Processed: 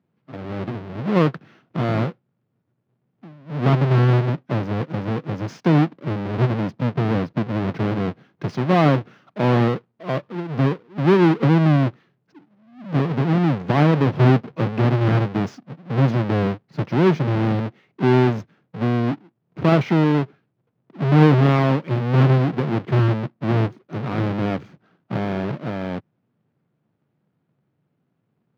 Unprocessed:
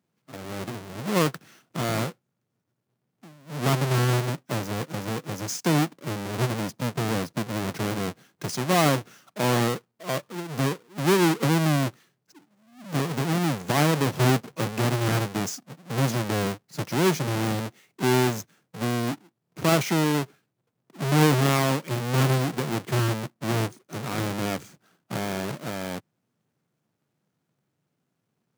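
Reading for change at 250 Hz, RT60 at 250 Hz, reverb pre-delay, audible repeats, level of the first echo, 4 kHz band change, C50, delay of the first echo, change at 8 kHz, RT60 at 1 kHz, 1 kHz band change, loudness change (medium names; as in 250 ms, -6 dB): +6.5 dB, no reverb, no reverb, no echo, no echo, -4.5 dB, no reverb, no echo, under -15 dB, no reverb, +3.0 dB, +5.5 dB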